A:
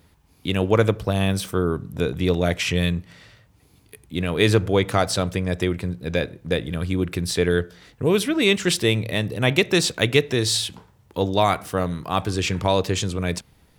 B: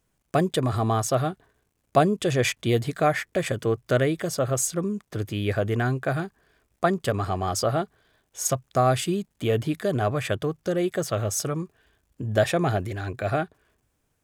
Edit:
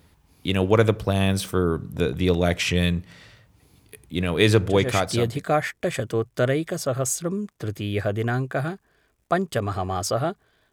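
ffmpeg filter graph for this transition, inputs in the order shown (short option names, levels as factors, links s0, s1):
-filter_complex "[0:a]apad=whole_dur=10.72,atrim=end=10.72,atrim=end=5.45,asetpts=PTS-STARTPTS[s0];[1:a]atrim=start=2.05:end=8.24,asetpts=PTS-STARTPTS[s1];[s0][s1]acrossfade=d=0.92:c1=qsin:c2=qsin"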